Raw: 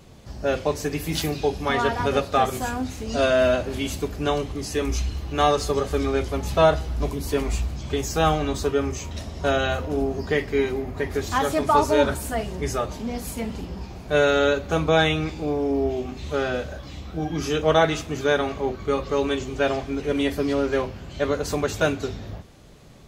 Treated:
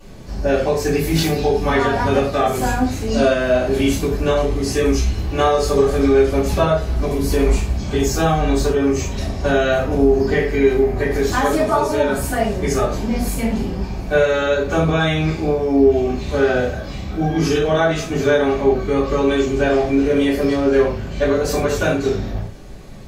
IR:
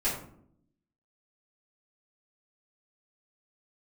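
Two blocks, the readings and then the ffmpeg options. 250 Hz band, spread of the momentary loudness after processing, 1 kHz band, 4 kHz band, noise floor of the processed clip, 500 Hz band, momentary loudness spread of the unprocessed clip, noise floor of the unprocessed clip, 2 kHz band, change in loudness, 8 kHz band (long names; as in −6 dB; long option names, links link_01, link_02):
+8.0 dB, 6 LU, +3.0 dB, +2.5 dB, −28 dBFS, +6.5 dB, 11 LU, −39 dBFS, +4.5 dB, +6.0 dB, +5.0 dB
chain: -filter_complex "[0:a]acompressor=threshold=-22dB:ratio=5[link_01];[1:a]atrim=start_sample=2205,afade=type=out:start_time=0.16:duration=0.01,atrim=end_sample=7497,asetrate=40572,aresample=44100[link_02];[link_01][link_02]afir=irnorm=-1:irlink=0"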